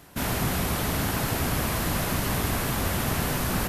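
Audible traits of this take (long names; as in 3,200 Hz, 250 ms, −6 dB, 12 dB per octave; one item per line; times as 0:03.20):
background noise floor −29 dBFS
spectral slope −4.0 dB per octave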